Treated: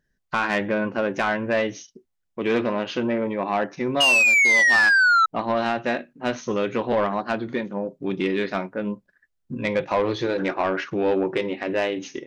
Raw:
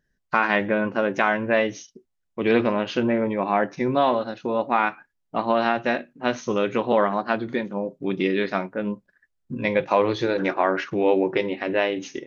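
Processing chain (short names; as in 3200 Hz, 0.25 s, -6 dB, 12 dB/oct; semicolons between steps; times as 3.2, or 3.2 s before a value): 4–5.26 painted sound fall 1300–2900 Hz -13 dBFS; soft clip -13.5 dBFS, distortion -13 dB; 2.39–4.75 low shelf 86 Hz -11 dB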